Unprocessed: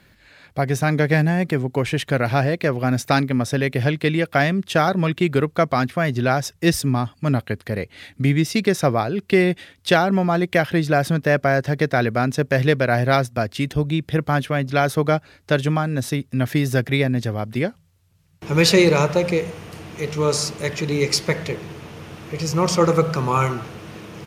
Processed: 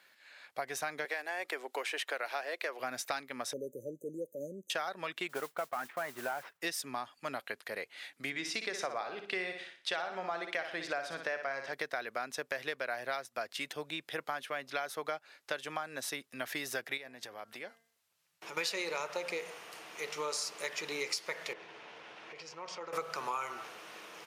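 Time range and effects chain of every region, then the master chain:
1.05–2.8 HPF 330 Hz 24 dB/oct + three-band squash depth 40%
3.53–4.7 bell 9500 Hz -10 dB 1.1 oct + transient shaper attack -5 dB, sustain +2 dB + brick-wall FIR band-stop 600–6000 Hz
5.29–6.61 CVSD 32 kbps + Chebyshev low-pass 1700 Hz + modulation noise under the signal 22 dB
8.3–11.73 LPF 6800 Hz + notches 50/100/150/200/250/300/350/400 Hz + flutter echo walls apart 10.2 m, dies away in 0.42 s
16.97–18.57 compressor, threshold -26 dBFS + de-hum 227.9 Hz, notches 9
21.53–22.93 LPF 4000 Hz + notch 1200 Hz, Q 11 + compressor 3:1, threshold -32 dBFS
whole clip: HPF 710 Hz 12 dB/oct; compressor 6:1, threshold -27 dBFS; gain -6 dB

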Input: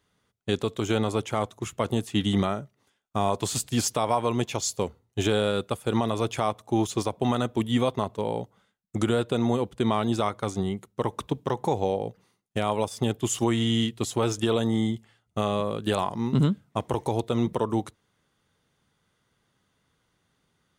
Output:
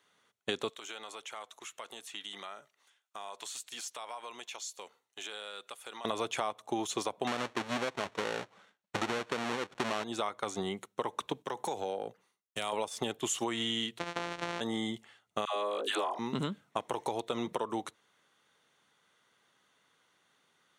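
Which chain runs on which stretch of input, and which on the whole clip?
0.69–6.05 HPF 1300 Hz 6 dB/oct + compressor 2.5:1, threshold -48 dBFS
7.27–10.04 half-waves squared off + air absorption 62 m
11.42–12.73 high shelf 5300 Hz +9 dB + compressor 3:1, threshold -31 dBFS + three-band expander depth 100%
13.99–14.61 sample sorter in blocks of 256 samples + compressor 2.5:1, threshold -28 dBFS + air absorption 93 m
15.45–16.19 steep high-pass 270 Hz + dispersion lows, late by 0.117 s, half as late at 620 Hz
whole clip: weighting filter A; compressor, threshold -33 dBFS; notch 4900 Hz, Q 10; gain +3 dB

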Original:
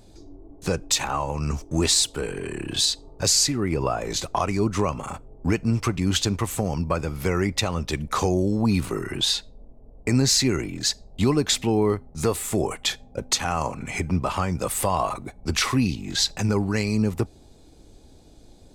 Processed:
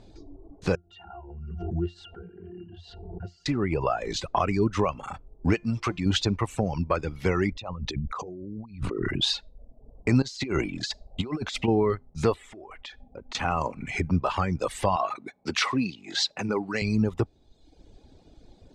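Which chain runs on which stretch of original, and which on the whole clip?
0.75–3.46 octave resonator F, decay 0.19 s + backwards sustainer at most 34 dB/s
5.54–6.06 low shelf 230 Hz -6.5 dB + de-hum 348.7 Hz, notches 38
7.52–9.22 formant sharpening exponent 1.5 + negative-ratio compressor -32 dBFS
10.22–11.68 low shelf 210 Hz -3.5 dB + negative-ratio compressor -26 dBFS, ratio -0.5 + notch 1800 Hz
12.34–13.35 LPF 2800 Hz 6 dB/oct + bell 140 Hz -8.5 dB 0.93 oct + compressor 8:1, threshold -36 dBFS
14.96–16.82 HPF 160 Hz + low shelf 250 Hz -5.5 dB + mismatched tape noise reduction encoder only
whole clip: LPF 4400 Hz 12 dB/oct; reverb removal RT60 1 s

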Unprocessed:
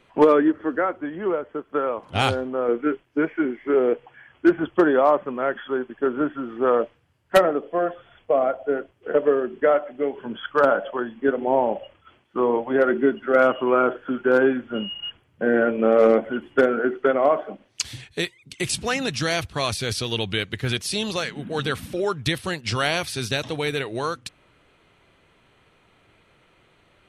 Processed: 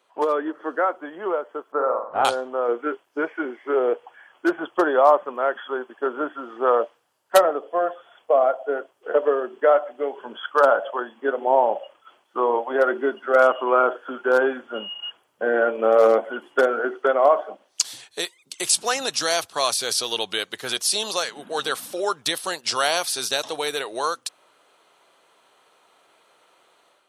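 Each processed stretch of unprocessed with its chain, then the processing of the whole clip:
1.72–2.25 block floating point 5-bit + LPF 1600 Hz 24 dB/oct + flutter echo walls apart 7.9 m, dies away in 0.48 s
whole clip: HPF 770 Hz 12 dB/oct; bell 2200 Hz -13.5 dB 1.4 oct; AGC gain up to 8 dB; gain +1.5 dB

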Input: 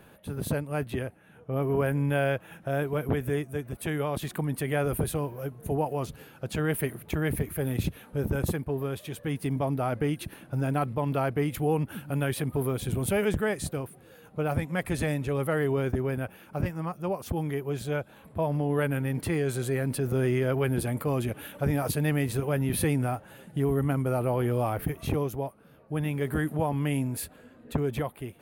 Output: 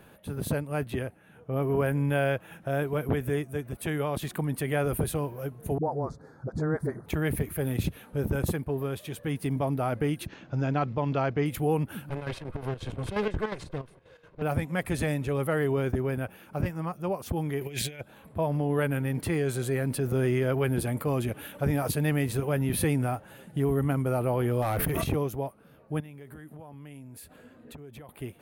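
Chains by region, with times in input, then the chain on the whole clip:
5.78–7.06 Butterworth band-stop 2800 Hz, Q 0.81 + air absorption 130 m + dispersion highs, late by 58 ms, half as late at 330 Hz
10.26–11.46 steep low-pass 6900 Hz 72 dB/oct + high shelf 5300 Hz +6 dB
12.09–14.42 minimum comb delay 1.9 ms + LPF 4600 Hz + chopper 5.6 Hz, depth 65%, duty 65%
17.61–18.01 resonant high shelf 1600 Hz +8 dB, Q 3 + negative-ratio compressor -34 dBFS, ratio -0.5
24.62–25.04 hard clip -25 dBFS + fast leveller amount 100%
26–28.09 HPF 42 Hz + compressor 5:1, threshold -44 dBFS
whole clip: dry

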